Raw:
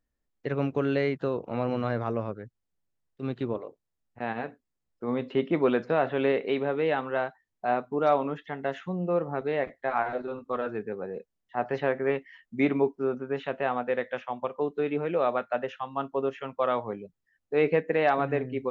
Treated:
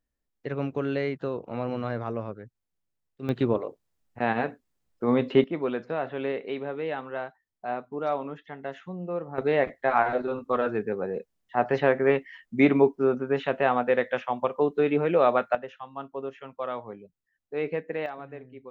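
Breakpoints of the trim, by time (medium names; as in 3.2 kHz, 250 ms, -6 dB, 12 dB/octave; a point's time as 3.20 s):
-2 dB
from 3.29 s +6.5 dB
from 5.44 s -5 dB
from 9.38 s +5 dB
from 15.55 s -6 dB
from 18.06 s -14 dB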